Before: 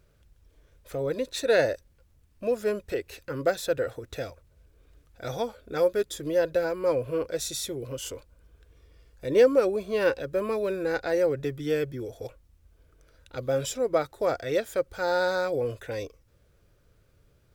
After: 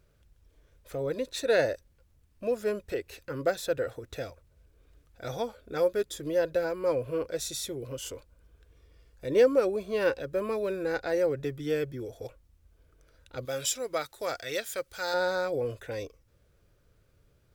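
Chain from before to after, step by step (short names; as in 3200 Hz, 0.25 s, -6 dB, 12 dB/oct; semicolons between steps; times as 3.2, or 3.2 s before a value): 13.45–15.14 tilt shelf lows -8 dB, about 1300 Hz; gain -2.5 dB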